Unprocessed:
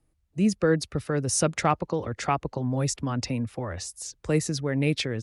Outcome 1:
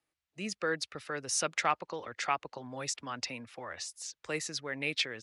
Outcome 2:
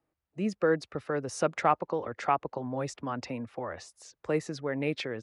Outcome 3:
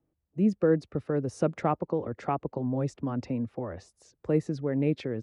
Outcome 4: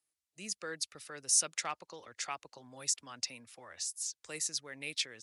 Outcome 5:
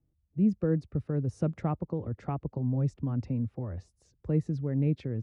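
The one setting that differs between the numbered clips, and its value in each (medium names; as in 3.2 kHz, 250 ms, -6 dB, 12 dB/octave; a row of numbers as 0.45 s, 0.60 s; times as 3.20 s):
band-pass filter, frequency: 2.7 kHz, 900 Hz, 350 Hz, 7.9 kHz, 120 Hz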